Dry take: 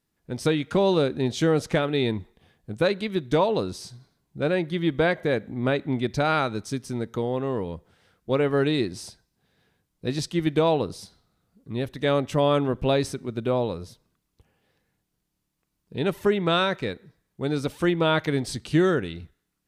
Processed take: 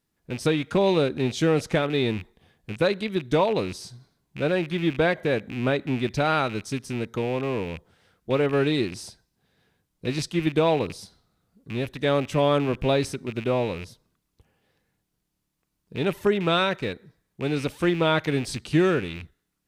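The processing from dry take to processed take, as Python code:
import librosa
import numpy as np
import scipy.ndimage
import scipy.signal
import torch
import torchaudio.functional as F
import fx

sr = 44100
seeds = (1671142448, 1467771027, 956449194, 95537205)

y = fx.rattle_buzz(x, sr, strikes_db=-35.0, level_db=-27.0)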